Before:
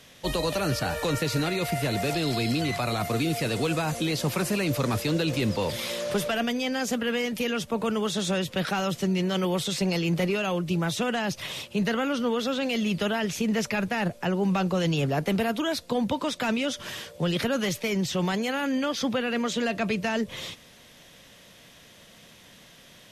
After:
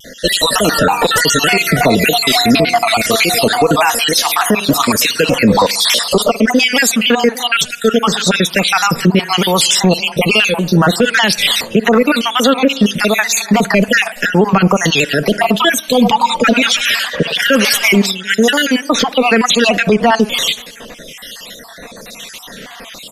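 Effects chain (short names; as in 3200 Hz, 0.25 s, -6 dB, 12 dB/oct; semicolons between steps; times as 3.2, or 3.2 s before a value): random spectral dropouts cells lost 51%; bell 93 Hz -10.5 dB 2.1 oct; comb 4.3 ms, depth 35%; 15.8–18.05 delay with a stepping band-pass 0.101 s, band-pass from 890 Hz, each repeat 0.7 oct, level -4 dB; spring tank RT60 1.2 s, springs 52 ms, chirp 65 ms, DRR 20 dB; harmonic tremolo 1.1 Hz, depth 70%, crossover 1700 Hz; maximiser +27 dB; shaped vibrato saw down 3.4 Hz, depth 100 cents; gain -1 dB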